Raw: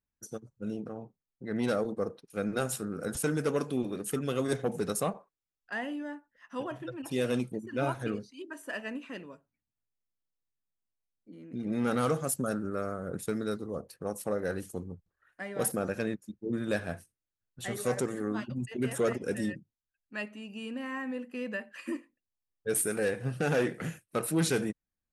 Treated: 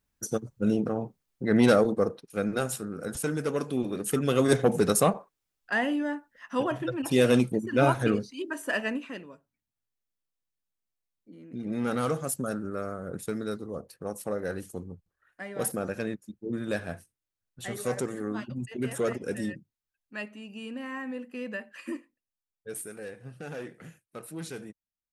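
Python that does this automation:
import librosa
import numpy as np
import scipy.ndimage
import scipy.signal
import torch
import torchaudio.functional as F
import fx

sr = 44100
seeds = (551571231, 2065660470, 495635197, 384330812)

y = fx.gain(x, sr, db=fx.line((1.53, 11.0), (2.86, 0.0), (3.51, 0.0), (4.54, 8.5), (8.84, 8.5), (9.25, 0.0), (21.91, 0.0), (22.95, -11.0)))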